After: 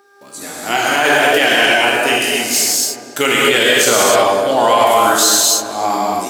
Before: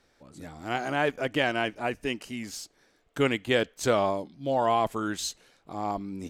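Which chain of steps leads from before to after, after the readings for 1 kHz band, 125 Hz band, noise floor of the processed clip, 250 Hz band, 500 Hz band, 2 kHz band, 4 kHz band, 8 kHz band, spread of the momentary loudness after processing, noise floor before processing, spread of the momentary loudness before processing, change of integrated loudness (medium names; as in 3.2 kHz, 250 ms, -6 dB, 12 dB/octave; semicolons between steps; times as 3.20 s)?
+16.0 dB, +3.5 dB, -38 dBFS, +9.5 dB, +13.5 dB, +18.5 dB, +21.0 dB, +26.5 dB, 8 LU, -67 dBFS, 16 LU, +16.5 dB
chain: gate -59 dBFS, range -14 dB; mains buzz 400 Hz, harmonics 4, -60 dBFS -5 dB/octave; high-pass 110 Hz; RIAA curve recording; filtered feedback delay 283 ms, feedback 67%, low-pass 1.4 kHz, level -10.5 dB; gated-style reverb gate 320 ms flat, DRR -5 dB; loudness maximiser +12.5 dB; trim -1 dB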